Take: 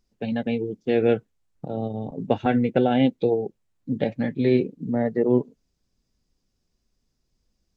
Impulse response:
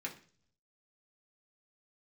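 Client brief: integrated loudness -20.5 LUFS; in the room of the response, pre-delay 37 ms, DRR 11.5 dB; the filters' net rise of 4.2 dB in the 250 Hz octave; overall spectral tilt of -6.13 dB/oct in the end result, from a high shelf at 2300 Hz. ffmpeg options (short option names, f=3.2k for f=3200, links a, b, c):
-filter_complex "[0:a]equalizer=f=250:t=o:g=4.5,highshelf=f=2.3k:g=8.5,asplit=2[a][b];[1:a]atrim=start_sample=2205,adelay=37[c];[b][c]afir=irnorm=-1:irlink=0,volume=-12dB[d];[a][d]amix=inputs=2:normalize=0,volume=0.5dB"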